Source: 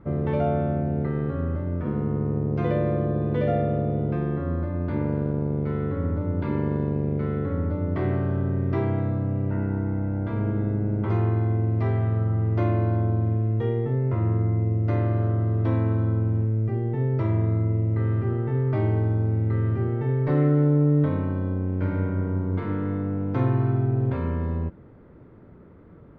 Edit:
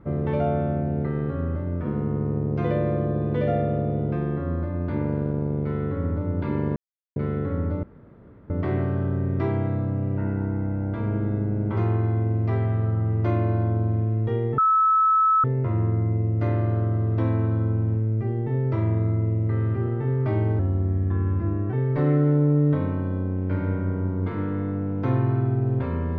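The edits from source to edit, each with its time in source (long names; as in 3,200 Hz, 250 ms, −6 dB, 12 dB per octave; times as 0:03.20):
0:06.76–0:07.16: silence
0:07.83: splice in room tone 0.67 s
0:13.91: insert tone 1,300 Hz −15.5 dBFS 0.86 s
0:19.06–0:20.04: play speed 86%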